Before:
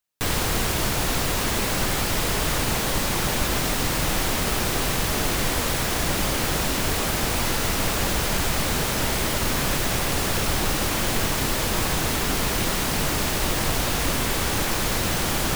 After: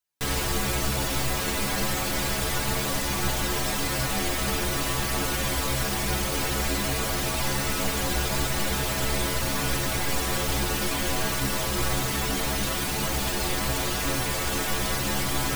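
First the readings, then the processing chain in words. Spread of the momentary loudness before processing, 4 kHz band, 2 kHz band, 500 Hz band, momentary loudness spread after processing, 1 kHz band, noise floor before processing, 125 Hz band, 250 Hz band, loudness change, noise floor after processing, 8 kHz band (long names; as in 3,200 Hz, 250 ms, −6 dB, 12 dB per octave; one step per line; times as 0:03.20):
0 LU, −3.0 dB, −3.0 dB, −3.0 dB, 0 LU, −3.0 dB, −25 dBFS, −2.5 dB, −3.0 dB, −3.0 dB, −28 dBFS, −3.0 dB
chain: stiff-string resonator 65 Hz, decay 0.33 s, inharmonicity 0.008
level +5 dB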